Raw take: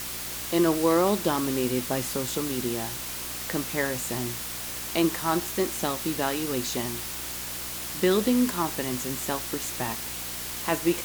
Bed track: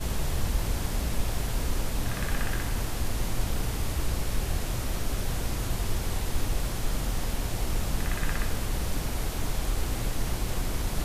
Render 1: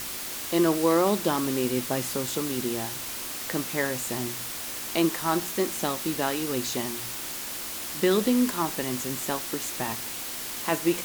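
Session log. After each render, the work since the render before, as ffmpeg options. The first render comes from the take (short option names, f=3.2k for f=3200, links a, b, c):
-af "bandreject=f=60:t=h:w=4,bandreject=f=120:t=h:w=4,bandreject=f=180:t=h:w=4"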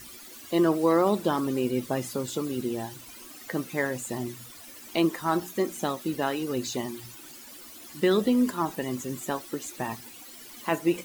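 -af "afftdn=nr=15:nf=-35"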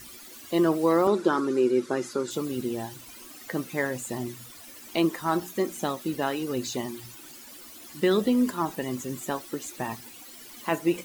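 -filter_complex "[0:a]asettb=1/sr,asplit=3[a][b][c];[a]atrim=end=1.074[d];[b]atrim=start=1.07:end=2.31,asetpts=PTS-STARTPTS,afade=t=in:d=0.004:c=qsin,afade=t=out:st=1.236:d=0.004:c=qsin,highpass=210,equalizer=f=370:t=q:w=4:g=9,equalizer=f=680:t=q:w=4:g=-5,equalizer=f=1.4k:t=q:w=4:g=9,equalizer=f=3k:t=q:w=4:g=-5,equalizer=f=8.6k:t=q:w=4:g=-5,lowpass=f=9.6k:w=0.5412,lowpass=f=9.6k:w=1.3066[e];[c]atrim=start=2.306[f];[d][e]acrossfade=d=0.004:c1=hsin:c2=qsin[g];[g][f]acrossfade=d=0.004:c1=qsin:c2=hsin"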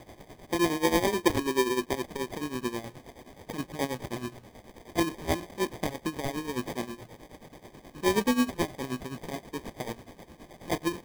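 -af "acrusher=samples=32:mix=1:aa=0.000001,tremolo=f=9.4:d=0.78"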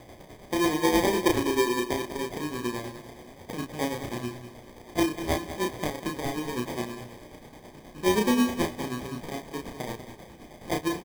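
-filter_complex "[0:a]asplit=2[a][b];[b]adelay=33,volume=-3.5dB[c];[a][c]amix=inputs=2:normalize=0,aecho=1:1:195|390|585|780:0.266|0.0905|0.0308|0.0105"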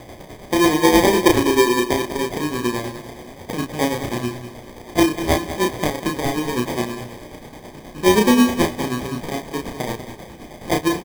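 -af "volume=9dB"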